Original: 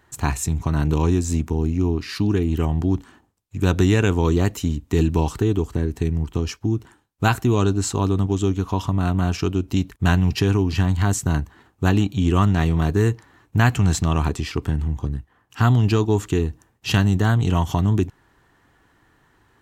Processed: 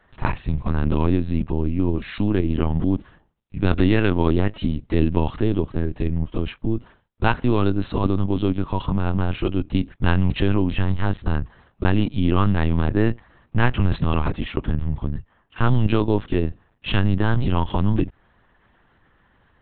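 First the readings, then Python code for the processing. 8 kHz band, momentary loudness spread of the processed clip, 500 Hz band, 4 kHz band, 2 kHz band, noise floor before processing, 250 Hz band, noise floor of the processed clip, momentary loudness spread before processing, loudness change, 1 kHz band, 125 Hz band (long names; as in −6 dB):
below −40 dB, 7 LU, −1.0 dB, −2.5 dB, −1.0 dB, −61 dBFS, 0.0 dB, −61 dBFS, 8 LU, −1.5 dB, −1.0 dB, −2.5 dB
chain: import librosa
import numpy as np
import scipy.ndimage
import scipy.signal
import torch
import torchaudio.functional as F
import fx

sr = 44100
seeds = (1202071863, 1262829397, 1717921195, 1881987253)

y = fx.lpc_vocoder(x, sr, seeds[0], excitation='pitch_kept', order=10)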